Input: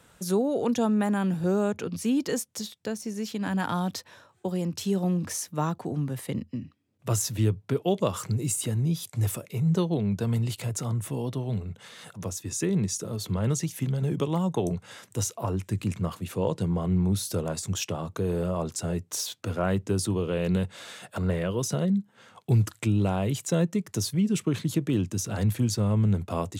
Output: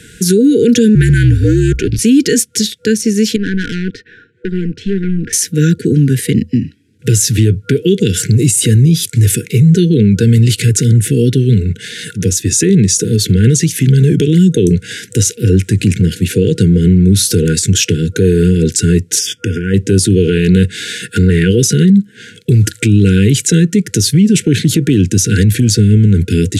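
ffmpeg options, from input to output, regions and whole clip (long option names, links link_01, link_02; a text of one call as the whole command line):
ffmpeg -i in.wav -filter_complex "[0:a]asettb=1/sr,asplit=3[link_01][link_02][link_03];[link_01]atrim=end=0.954[link_04];[link_02]atrim=start=0.95:end=1.99,asetpts=PTS-STARTPTS,afade=type=in:duration=0.004:curve=qsin,afade=type=out:start_time=1.036:duration=0.004:curve=qsin,aeval=exprs='if(lt(val(0),0),0.447*val(0),val(0))':channel_layout=same,highshelf=frequency=7900:gain=-4.5,afreqshift=-63[link_05];[link_03]atrim=start=1.986[link_06];[link_04][link_05]acrossfade=duration=0.004:curve1=hsin:curve2=qsin[link_07];[link_07][link_06]acrossfade=duration=0.004:curve1=qsin:curve2=hsin,asettb=1/sr,asplit=3[link_08][link_09][link_10];[link_08]atrim=end=3.364[link_11];[link_09]atrim=start=3.36:end=5.33,asetpts=PTS-STARTPTS,afade=type=in:duration=0.004:curve=qsin,afade=type=out:start_time=1.966:duration=0.004:curve=qsin,lowpass=1800,lowshelf=frequency=130:gain=-10.5,aeval=exprs='(tanh(39.8*val(0)+0.75)-tanh(0.75))/39.8':channel_layout=same[link_12];[link_10]atrim=start=5.326[link_13];[link_11][link_12]acrossfade=duration=0.004:curve1=hsin:curve2=qsin[link_14];[link_14][link_13]acrossfade=duration=0.004:curve1=qsin:curve2=hsin,asettb=1/sr,asplit=3[link_15][link_16][link_17];[link_15]atrim=end=19.194[link_18];[link_16]atrim=start=19.19:end=19.74,asetpts=PTS-STARTPTS,afade=type=in:duration=0.004:curve=qsin,afade=type=out:start_time=0.546:duration=0.004:curve=qsin,highshelf=frequency=7700:gain=-8.5,acompressor=threshold=-32dB:ratio=4:attack=3.2:release=140:knee=1:detection=peak,asuperstop=centerf=4100:order=8:qfactor=3.5[link_19];[link_17]atrim=start=19.736[link_20];[link_18][link_19]acrossfade=duration=0.004:curve1=hsin:curve2=qsin[link_21];[link_21][link_20]acrossfade=duration=0.004:curve1=qsin:curve2=hsin,afftfilt=real='re*(1-between(b*sr/4096,490,1400))':imag='im*(1-between(b*sr/4096,490,1400))':win_size=4096:overlap=0.75,lowpass=frequency=12000:width=0.5412,lowpass=frequency=12000:width=1.3066,alimiter=level_in=22dB:limit=-1dB:release=50:level=0:latency=1,volume=-1dB" out.wav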